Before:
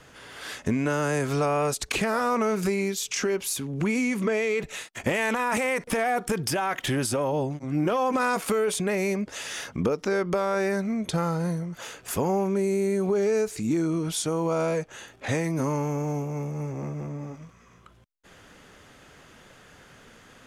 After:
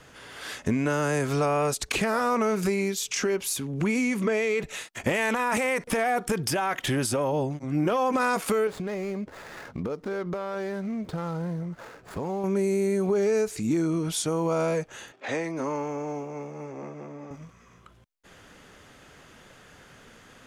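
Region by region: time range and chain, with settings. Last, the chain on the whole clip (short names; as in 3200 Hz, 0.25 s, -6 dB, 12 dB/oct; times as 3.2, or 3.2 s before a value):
8.67–12.44 median filter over 15 samples + high shelf 8800 Hz -5 dB + compressor 3:1, threshold -29 dBFS
15.12–17.31 HPF 300 Hz + air absorption 87 m
whole clip: dry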